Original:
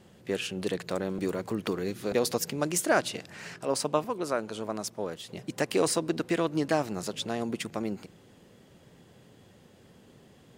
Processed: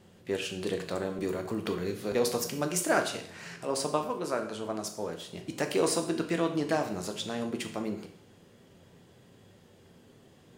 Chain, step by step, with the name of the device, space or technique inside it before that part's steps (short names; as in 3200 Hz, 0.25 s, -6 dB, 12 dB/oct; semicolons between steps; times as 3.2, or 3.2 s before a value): bathroom (reverb RT60 0.60 s, pre-delay 8 ms, DRR 4.5 dB); gain -2.5 dB